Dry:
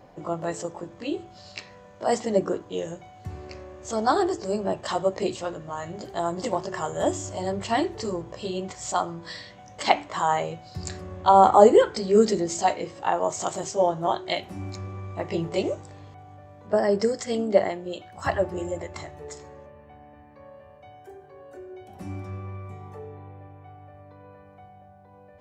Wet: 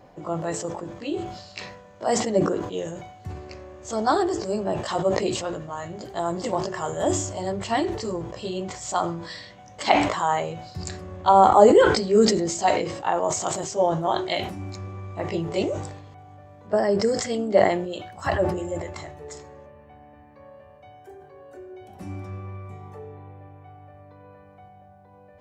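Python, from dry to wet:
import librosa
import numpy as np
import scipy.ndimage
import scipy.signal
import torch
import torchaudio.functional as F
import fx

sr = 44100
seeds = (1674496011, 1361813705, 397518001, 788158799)

y = fx.sustainer(x, sr, db_per_s=60.0)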